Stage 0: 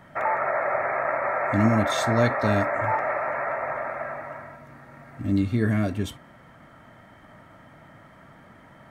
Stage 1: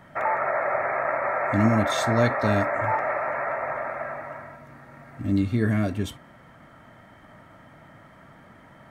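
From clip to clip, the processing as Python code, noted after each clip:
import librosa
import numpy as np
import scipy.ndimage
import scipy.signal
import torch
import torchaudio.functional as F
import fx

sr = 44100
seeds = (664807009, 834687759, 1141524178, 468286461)

y = x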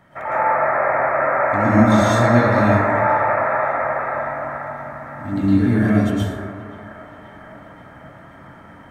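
y = fx.echo_wet_bandpass(x, sr, ms=528, feedback_pct=64, hz=1100.0, wet_db=-12)
y = fx.rev_plate(y, sr, seeds[0], rt60_s=1.7, hf_ratio=0.35, predelay_ms=100, drr_db=-9.5)
y = y * 10.0 ** (-3.5 / 20.0)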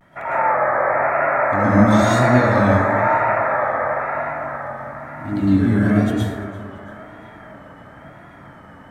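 y = fx.vibrato(x, sr, rate_hz=1.0, depth_cents=85.0)
y = fx.echo_feedback(y, sr, ms=341, feedback_pct=48, wet_db=-21)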